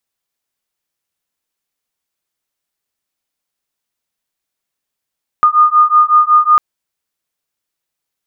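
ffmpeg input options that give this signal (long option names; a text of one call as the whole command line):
ffmpeg -f lavfi -i "aevalsrc='0.335*(sin(2*PI*1220*t)+sin(2*PI*1225.4*t))':duration=1.15:sample_rate=44100" out.wav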